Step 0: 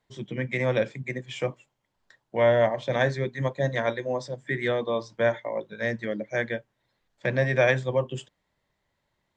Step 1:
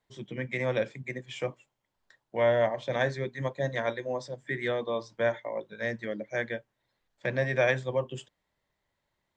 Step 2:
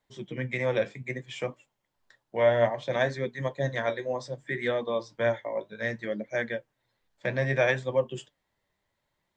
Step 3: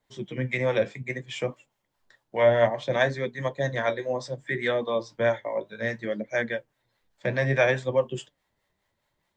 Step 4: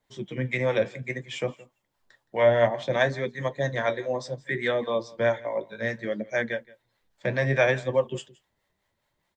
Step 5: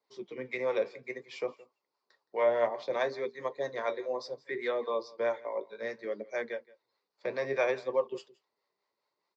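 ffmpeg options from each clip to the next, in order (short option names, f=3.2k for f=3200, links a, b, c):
-af "equalizer=f=150:t=o:w=1.8:g=-2.5,volume=-3.5dB"
-af "flanger=delay=3.2:depth=7.8:regen=64:speed=0.63:shape=triangular,volume=5.5dB"
-filter_complex "[0:a]acrossover=split=600[a][b];[a]aeval=exprs='val(0)*(1-0.5/2+0.5/2*cos(2*PI*4.8*n/s))':c=same[c];[b]aeval=exprs='val(0)*(1-0.5/2-0.5/2*cos(2*PI*4.8*n/s))':c=same[d];[c][d]amix=inputs=2:normalize=0,volume=5dB"
-af "aecho=1:1:169:0.0794"
-af "highpass=380,equalizer=f=420:t=q:w=4:g=8,equalizer=f=650:t=q:w=4:g=-3,equalizer=f=1.1k:t=q:w=4:g=5,equalizer=f=1.7k:t=q:w=4:g=-8,equalizer=f=3.2k:t=q:w=4:g=-10,equalizer=f=4.6k:t=q:w=4:g=8,lowpass=f=5.6k:w=0.5412,lowpass=f=5.6k:w=1.3066,volume=-5.5dB"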